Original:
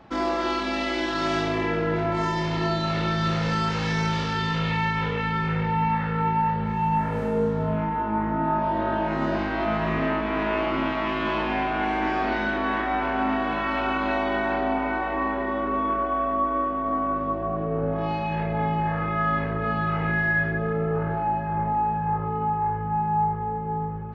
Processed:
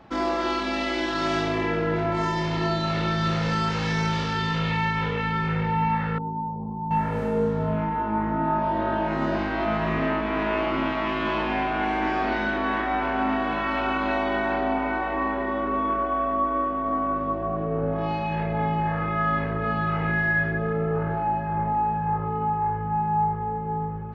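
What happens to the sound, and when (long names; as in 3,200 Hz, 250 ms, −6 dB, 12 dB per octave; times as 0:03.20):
0:06.18–0:06.91: Chebyshev low-pass with heavy ripple 1,100 Hz, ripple 9 dB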